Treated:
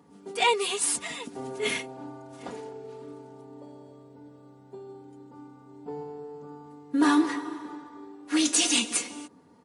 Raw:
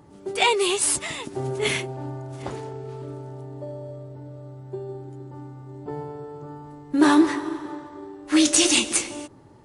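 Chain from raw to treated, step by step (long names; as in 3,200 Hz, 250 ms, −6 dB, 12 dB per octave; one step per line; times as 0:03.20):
high-pass filter 95 Hz 24 dB per octave
comb filter 4.2 ms, depth 88%
level −7 dB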